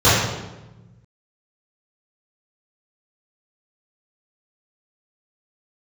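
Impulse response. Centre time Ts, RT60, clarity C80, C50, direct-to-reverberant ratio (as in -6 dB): 79 ms, 1.1 s, 2.5 dB, -0.5 dB, -15.5 dB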